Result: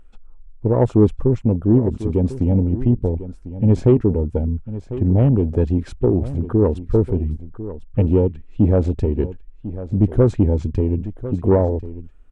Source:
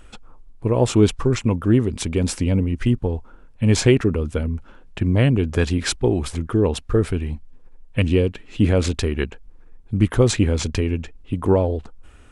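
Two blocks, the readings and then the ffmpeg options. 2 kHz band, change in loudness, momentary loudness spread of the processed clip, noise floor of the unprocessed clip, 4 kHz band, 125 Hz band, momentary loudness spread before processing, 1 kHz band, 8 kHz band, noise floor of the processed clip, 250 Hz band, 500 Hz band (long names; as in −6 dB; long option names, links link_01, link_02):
below −15 dB, +1.5 dB, 12 LU, −46 dBFS, below −20 dB, +2.5 dB, 11 LU, −0.5 dB, below −20 dB, −43 dBFS, +2.0 dB, +2.0 dB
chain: -af "afwtdn=0.0562,highshelf=frequency=2200:gain=-10,acontrast=39,aecho=1:1:1048:0.2,volume=-2.5dB"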